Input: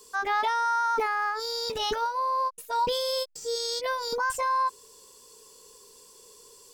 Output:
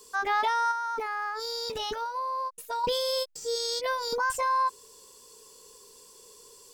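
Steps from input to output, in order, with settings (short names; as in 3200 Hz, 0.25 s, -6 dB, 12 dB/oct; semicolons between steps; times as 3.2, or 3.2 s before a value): 0.71–2.84 compressor 4:1, threshold -30 dBFS, peak gain reduction 7 dB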